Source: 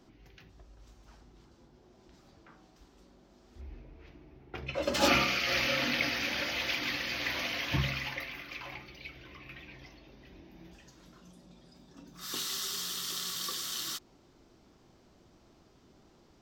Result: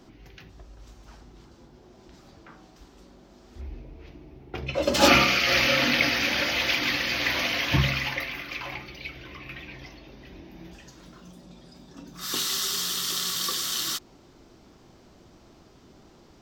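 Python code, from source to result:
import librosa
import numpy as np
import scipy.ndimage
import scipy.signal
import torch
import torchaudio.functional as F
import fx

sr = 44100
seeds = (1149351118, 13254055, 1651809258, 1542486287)

y = fx.peak_eq(x, sr, hz=1600.0, db=-5.0, octaves=1.4, at=(3.68, 4.99))
y = fx.resample_linear(y, sr, factor=2, at=(11.01, 11.43))
y = y * 10.0 ** (8.0 / 20.0)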